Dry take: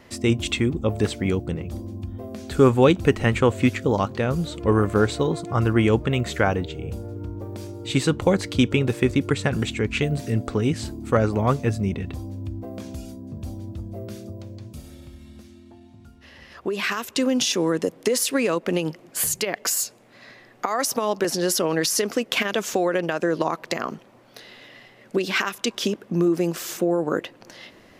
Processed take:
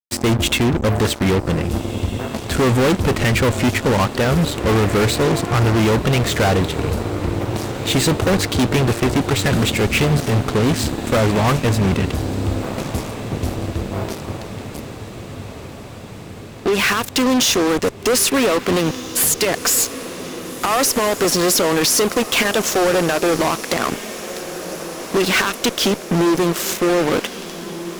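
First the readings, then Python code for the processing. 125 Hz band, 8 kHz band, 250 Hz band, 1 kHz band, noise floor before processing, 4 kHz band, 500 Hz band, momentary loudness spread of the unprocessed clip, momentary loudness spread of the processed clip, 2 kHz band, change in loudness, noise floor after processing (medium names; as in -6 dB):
+6.0 dB, +8.5 dB, +4.5 dB, +7.0 dB, -51 dBFS, +8.5 dB, +4.5 dB, 15 LU, 14 LU, +7.0 dB, +5.5 dB, -34 dBFS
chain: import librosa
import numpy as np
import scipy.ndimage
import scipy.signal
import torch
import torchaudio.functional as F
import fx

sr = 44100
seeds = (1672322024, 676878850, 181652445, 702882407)

y = fx.wow_flutter(x, sr, seeds[0], rate_hz=2.1, depth_cents=29.0)
y = fx.fuzz(y, sr, gain_db=30.0, gate_db=-34.0)
y = fx.echo_diffused(y, sr, ms=1637, feedback_pct=65, wet_db=-13.5)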